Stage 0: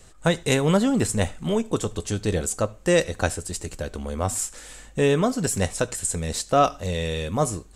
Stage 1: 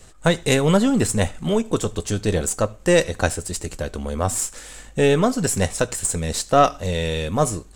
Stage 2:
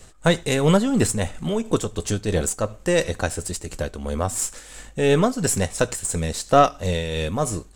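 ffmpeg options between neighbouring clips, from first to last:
-af "aeval=exprs='if(lt(val(0),0),0.708*val(0),val(0))':c=same,volume=4.5dB"
-af "tremolo=f=2.9:d=0.47,volume=1dB"

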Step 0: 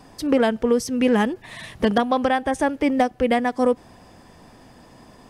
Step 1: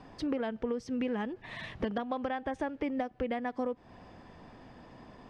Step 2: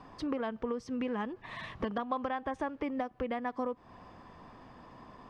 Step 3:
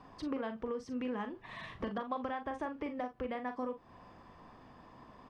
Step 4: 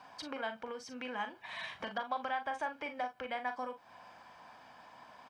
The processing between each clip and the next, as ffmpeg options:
-af "lowpass=3.5k,acompressor=threshold=-27dB:ratio=5,volume=-4dB"
-af "equalizer=f=1.1k:t=o:w=0.44:g=9.5,volume=-2dB"
-af "aecho=1:1:40|55:0.376|0.15,volume=-4dB"
-af "highpass=f=1.4k:p=1,aecho=1:1:1.3:0.51,volume=7dB"

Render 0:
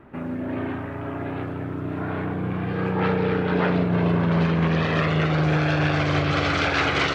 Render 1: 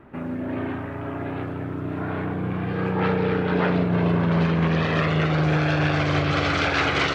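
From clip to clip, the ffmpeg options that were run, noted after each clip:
-af anull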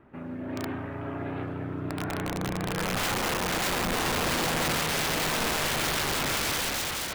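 -af "aeval=exprs='(mod(8.91*val(0)+1,2)-1)/8.91':c=same,dynaudnorm=f=120:g=9:m=4dB,volume=-8dB"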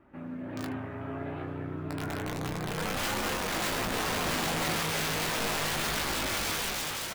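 -filter_complex "[0:a]asplit=2[a][b];[b]aecho=0:1:19|76:0.531|0.15[c];[a][c]amix=inputs=2:normalize=0,flanger=delay=3.4:depth=9.9:regen=-59:speed=0.32:shape=sinusoidal"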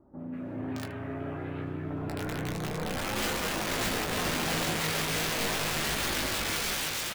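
-filter_complex "[0:a]acrossover=split=1000[a][b];[b]adelay=190[c];[a][c]amix=inputs=2:normalize=0,volume=1dB"

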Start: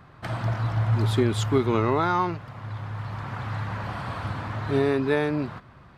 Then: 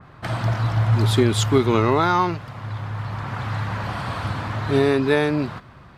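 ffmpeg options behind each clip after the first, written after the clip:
-af "adynamicequalizer=threshold=0.00891:dfrequency=2700:dqfactor=0.7:tfrequency=2700:tqfactor=0.7:attack=5:release=100:ratio=0.375:range=2.5:mode=boostabove:tftype=highshelf,volume=4.5dB"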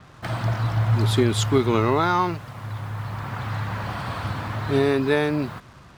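-af "acrusher=bits=7:mix=0:aa=0.5,volume=-2dB"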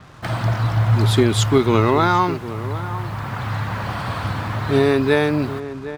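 -filter_complex "[0:a]asplit=2[a][b];[b]adelay=758,volume=-13dB,highshelf=f=4k:g=-17.1[c];[a][c]amix=inputs=2:normalize=0,volume=4dB"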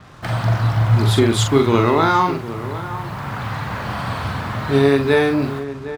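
-filter_complex "[0:a]asplit=2[a][b];[b]adelay=43,volume=-5.5dB[c];[a][c]amix=inputs=2:normalize=0"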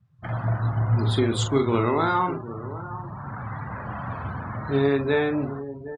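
-filter_complex "[0:a]asplit=5[a][b][c][d][e];[b]adelay=159,afreqshift=130,volume=-22.5dB[f];[c]adelay=318,afreqshift=260,volume=-26.9dB[g];[d]adelay=477,afreqshift=390,volume=-31.4dB[h];[e]adelay=636,afreqshift=520,volume=-35.8dB[i];[a][f][g][h][i]amix=inputs=5:normalize=0,afftdn=nr=30:nf=-29,volume=-7dB"

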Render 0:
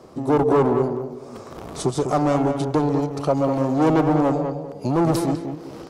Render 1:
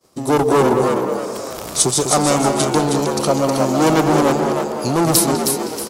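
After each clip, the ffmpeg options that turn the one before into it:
-filter_complex "[0:a]crystalizer=i=7:c=0,asplit=5[a][b][c][d][e];[b]adelay=316,afreqshift=72,volume=-5dB[f];[c]adelay=632,afreqshift=144,volume=-14.1dB[g];[d]adelay=948,afreqshift=216,volume=-23.2dB[h];[e]adelay=1264,afreqshift=288,volume=-32.4dB[i];[a][f][g][h][i]amix=inputs=5:normalize=0,agate=range=-33dB:threshold=-32dB:ratio=3:detection=peak,volume=1.5dB"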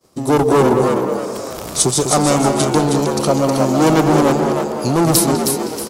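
-af "lowshelf=f=330:g=4"

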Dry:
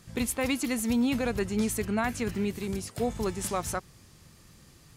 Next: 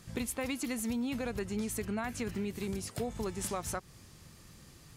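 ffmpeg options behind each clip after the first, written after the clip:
-af "acompressor=threshold=-33dB:ratio=4"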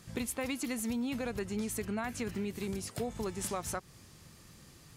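-af "lowshelf=f=61:g=-5.5"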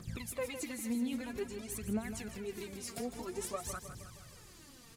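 -af "acompressor=threshold=-38dB:ratio=6,aphaser=in_gain=1:out_gain=1:delay=4.5:decay=0.76:speed=0.51:type=triangular,aecho=1:1:157|314|471|628|785|942:0.316|0.177|0.0992|0.0555|0.0311|0.0174,volume=-3dB"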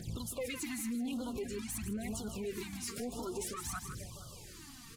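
-af "alimiter=level_in=9dB:limit=-24dB:level=0:latency=1:release=32,volume=-9dB,asoftclip=type=tanh:threshold=-36.5dB,afftfilt=real='re*(1-between(b*sr/1024,450*pow(2100/450,0.5+0.5*sin(2*PI*1*pts/sr))/1.41,450*pow(2100/450,0.5+0.5*sin(2*PI*1*pts/sr))*1.41))':imag='im*(1-between(b*sr/1024,450*pow(2100/450,0.5+0.5*sin(2*PI*1*pts/sr))/1.41,450*pow(2100/450,0.5+0.5*sin(2*PI*1*pts/sr))*1.41))':win_size=1024:overlap=0.75,volume=5dB"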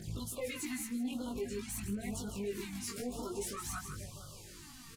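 -filter_complex "[0:a]asplit=2[a][b];[b]adelay=20,volume=-2dB[c];[a][c]amix=inputs=2:normalize=0,volume=-2.5dB"

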